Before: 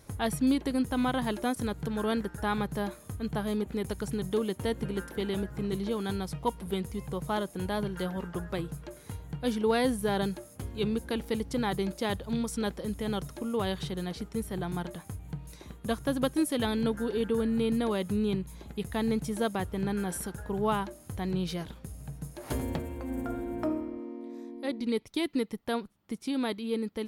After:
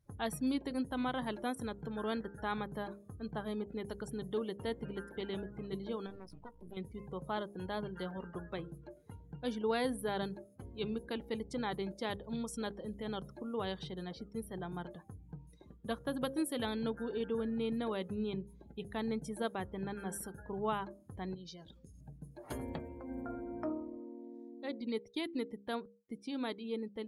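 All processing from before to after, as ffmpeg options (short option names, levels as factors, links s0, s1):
-filter_complex "[0:a]asettb=1/sr,asplit=3[s0][s1][s2];[s0]atrim=end=6.064[s3];[s1]atrim=start=6.06:end=6.77,asetpts=PTS-STARTPTS,afade=t=in:d=0.004:c=qsin,afade=t=out:st=0.706:d=0.004:c=qsin,acompressor=threshold=0.0224:ratio=16:attack=3.2:release=140:knee=1:detection=peak,aeval=exprs='max(val(0),0)':c=same,asplit=2[s4][s5];[s5]adelay=18,volume=0.211[s6];[s4][s6]amix=inputs=2:normalize=0,atrim=end_sample=31311[s7];[s2]atrim=start=6.766[s8];[s3][s7]acrossfade=d=0.004:c1=hsin:c2=qsin[s9];[s9][s8]acrossfade=d=0.004:c1=qsin:c2=hsin,asettb=1/sr,asplit=3[s10][s11][s12];[s10]atrim=end=21.344[s13];[s11]atrim=start=21.34:end=22.01,asetpts=PTS-STARTPTS,afade=t=in:d=0.004:c=qsin,afade=t=out:st=0.666:d=0.004:c=qsin,equalizer=f=5700:t=o:w=1.4:g=10.5,acompressor=threshold=0.01:ratio=4:attack=3.2:release=140:knee=1:detection=peak[s14];[s12]atrim=start=22.006[s15];[s13][s14]acrossfade=d=0.004:c1=hsin:c2=qsin[s16];[s16][s15]acrossfade=d=0.004:c1=qsin:c2=hsin,bandreject=f=67.48:t=h:w=4,bandreject=f=134.96:t=h:w=4,bandreject=f=202.44:t=h:w=4,bandreject=f=269.92:t=h:w=4,bandreject=f=337.4:t=h:w=4,bandreject=f=404.88:t=h:w=4,bandreject=f=472.36:t=h:w=4,bandreject=f=539.84:t=h:w=4,afftdn=nr=22:nf=-47,lowshelf=f=160:g=-6.5,volume=0.501"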